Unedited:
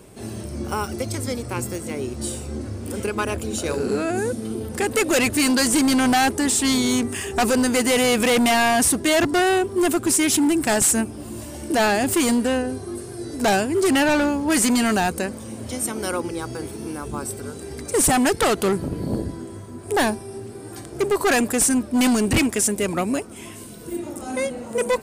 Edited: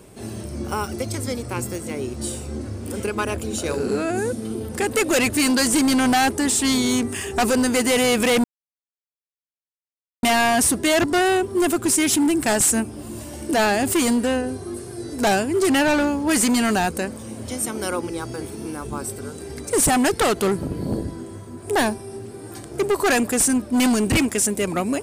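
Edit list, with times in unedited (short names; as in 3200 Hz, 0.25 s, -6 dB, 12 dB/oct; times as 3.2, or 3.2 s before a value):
8.44 insert silence 1.79 s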